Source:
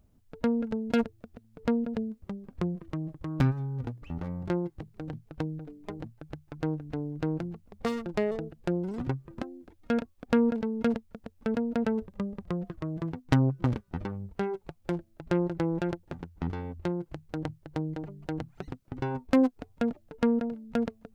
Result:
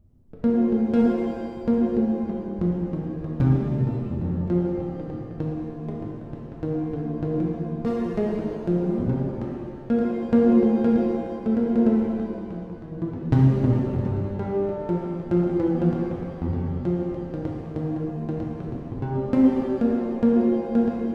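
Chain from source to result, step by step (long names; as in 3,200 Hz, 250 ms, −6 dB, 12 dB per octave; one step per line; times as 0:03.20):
tilt shelving filter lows +8.5 dB, about 710 Hz
0:12.09–0:12.92: downward compressor 2 to 1, threshold −41 dBFS, peak gain reduction 10.5 dB
reverb with rising layers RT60 1.8 s, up +7 semitones, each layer −8 dB, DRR −3 dB
level −3.5 dB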